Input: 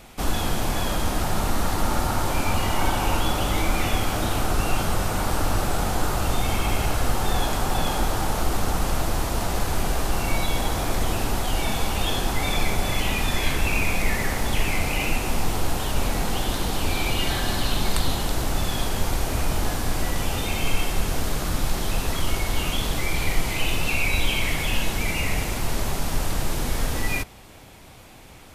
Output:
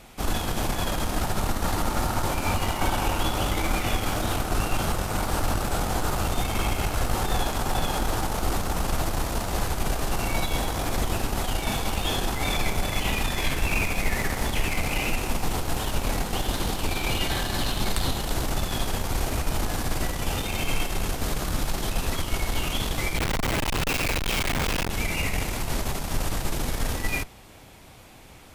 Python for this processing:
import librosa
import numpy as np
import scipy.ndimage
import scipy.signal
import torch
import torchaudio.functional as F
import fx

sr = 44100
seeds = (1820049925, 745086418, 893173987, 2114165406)

y = fx.cheby_harmonics(x, sr, harmonics=(3, 5, 8), levels_db=(-17, -27, -28), full_scale_db=-5.5)
y = fx.schmitt(y, sr, flips_db=-31.0, at=(23.18, 24.9))